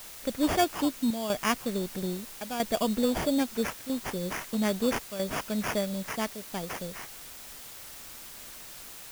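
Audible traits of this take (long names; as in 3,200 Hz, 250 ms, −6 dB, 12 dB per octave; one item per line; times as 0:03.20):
aliases and images of a low sample rate 4,000 Hz, jitter 0%
chopped level 0.77 Hz, depth 65%, duty 85%
a quantiser's noise floor 8 bits, dither triangular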